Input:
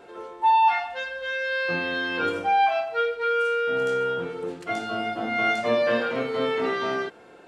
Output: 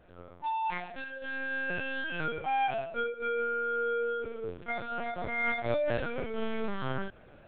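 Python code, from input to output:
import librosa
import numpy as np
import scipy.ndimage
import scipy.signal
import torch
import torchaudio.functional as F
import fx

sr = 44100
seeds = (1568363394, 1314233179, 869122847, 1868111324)

y = fx.rider(x, sr, range_db=4, speed_s=2.0)
y = fx.notch_comb(y, sr, f0_hz=950.0)
y = fx.lpc_vocoder(y, sr, seeds[0], excitation='pitch_kept', order=8)
y = y * 10.0 ** (-7.5 / 20.0)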